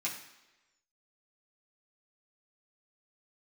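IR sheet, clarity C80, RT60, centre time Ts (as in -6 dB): 10.0 dB, 1.1 s, 28 ms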